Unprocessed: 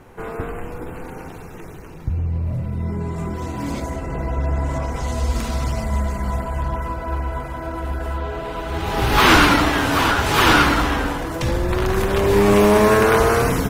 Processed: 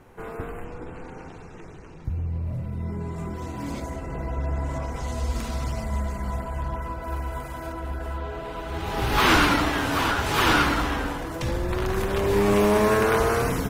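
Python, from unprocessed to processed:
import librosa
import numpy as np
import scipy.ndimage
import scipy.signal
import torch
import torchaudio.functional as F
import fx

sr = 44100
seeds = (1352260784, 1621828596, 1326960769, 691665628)

y = fx.lowpass(x, sr, hz=7800.0, slope=24, at=(0.64, 2.05))
y = fx.high_shelf(y, sr, hz=fx.line((7.02, 6100.0), (7.72, 3400.0)), db=11.0, at=(7.02, 7.72), fade=0.02)
y = y * librosa.db_to_amplitude(-6.0)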